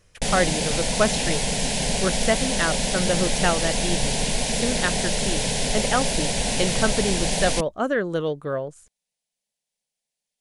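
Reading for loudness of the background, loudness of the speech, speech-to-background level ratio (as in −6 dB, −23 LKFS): −23.5 LKFS, −26.5 LKFS, −3.0 dB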